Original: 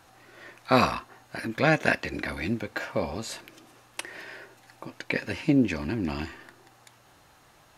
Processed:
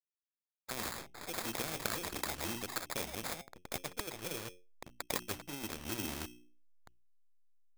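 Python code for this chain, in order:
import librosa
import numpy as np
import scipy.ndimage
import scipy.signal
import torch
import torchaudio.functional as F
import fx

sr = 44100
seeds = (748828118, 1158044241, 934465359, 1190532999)

y = fx.bin_expand(x, sr, power=1.5)
y = fx.transient(y, sr, attack_db=0, sustain_db=-7)
y = fx.over_compress(y, sr, threshold_db=-31.0, ratio=-1.0)
y = fx.dynamic_eq(y, sr, hz=320.0, q=1.4, threshold_db=-47.0, ratio=4.0, max_db=7)
y = fx.backlash(y, sr, play_db=-33.5)
y = fx.hum_notches(y, sr, base_hz=60, count=6)
y = fx.echo_pitch(y, sr, ms=313, semitones=7, count=3, db_per_echo=-6.0)
y = fx.sample_hold(y, sr, seeds[0], rate_hz=2900.0, jitter_pct=0)
y = fx.spectral_comp(y, sr, ratio=2.0)
y = F.gain(torch.from_numpy(y), -3.5).numpy()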